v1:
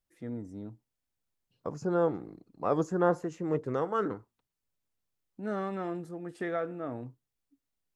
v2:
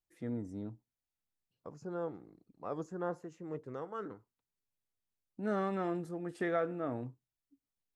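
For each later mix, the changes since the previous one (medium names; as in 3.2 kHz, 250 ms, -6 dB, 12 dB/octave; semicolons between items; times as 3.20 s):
second voice -11.5 dB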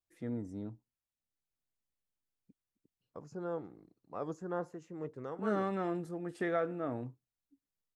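second voice: entry +1.50 s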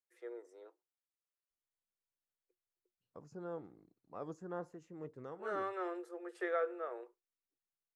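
first voice: add rippled Chebyshev high-pass 350 Hz, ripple 6 dB; second voice -5.5 dB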